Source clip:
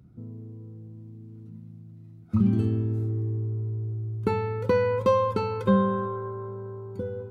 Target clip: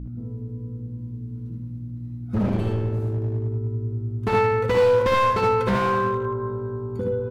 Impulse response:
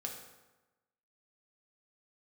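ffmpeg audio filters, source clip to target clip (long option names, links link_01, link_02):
-af "adynamicequalizer=threshold=0.00708:dfrequency=2100:dqfactor=0.74:tfrequency=2100:tqfactor=0.74:attack=5:release=100:ratio=0.375:range=3:mode=boostabove:tftype=bell,aeval=exprs='val(0)+0.0178*(sin(2*PI*60*n/s)+sin(2*PI*2*60*n/s)/2+sin(2*PI*3*60*n/s)/3+sin(2*PI*4*60*n/s)/4+sin(2*PI*5*60*n/s)/5)':channel_layout=same,asoftclip=type=hard:threshold=-22.5dB,aecho=1:1:59|75:0.473|0.708,volume=3dB"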